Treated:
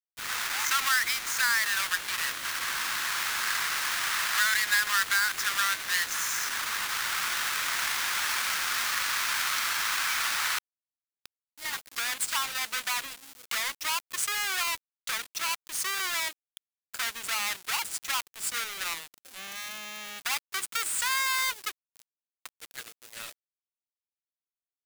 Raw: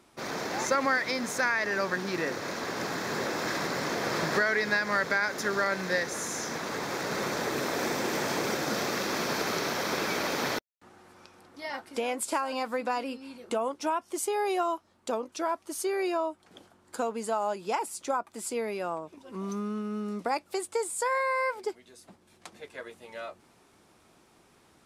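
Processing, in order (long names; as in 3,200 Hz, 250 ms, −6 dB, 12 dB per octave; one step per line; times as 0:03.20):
each half-wave held at its own peak
inverse Chebyshev high-pass filter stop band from 460 Hz, stop band 50 dB
in parallel at −2 dB: output level in coarse steps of 18 dB
on the sum: bit-depth reduction 6 bits, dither none
level −1.5 dB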